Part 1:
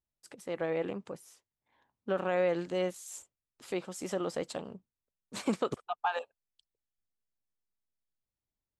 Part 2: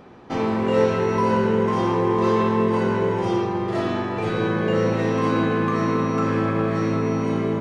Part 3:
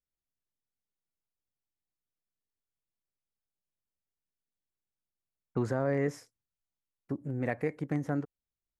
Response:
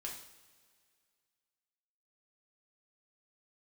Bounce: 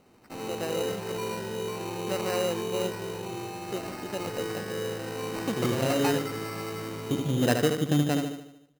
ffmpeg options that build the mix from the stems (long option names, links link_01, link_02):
-filter_complex "[0:a]volume=-0.5dB,asplit=2[link_01][link_02];[1:a]volume=-14.5dB,asplit=2[link_03][link_04];[link_04]volume=-3dB[link_05];[2:a]lowpass=2700,dynaudnorm=framelen=100:gausssize=13:maxgain=6.5dB,volume=-0.5dB,asplit=3[link_06][link_07][link_08];[link_07]volume=-12dB[link_09];[link_08]volume=-4.5dB[link_10];[link_02]apad=whole_len=387980[link_11];[link_06][link_11]sidechaincompress=threshold=-39dB:ratio=8:attack=16:release=1170[link_12];[3:a]atrim=start_sample=2205[link_13];[link_09][link_13]afir=irnorm=-1:irlink=0[link_14];[link_05][link_10]amix=inputs=2:normalize=0,aecho=0:1:75|150|225|300|375|450|525:1|0.51|0.26|0.133|0.0677|0.0345|0.0176[link_15];[link_01][link_03][link_12][link_14][link_15]amix=inputs=5:normalize=0,lowpass=6000,acrusher=samples=13:mix=1:aa=0.000001"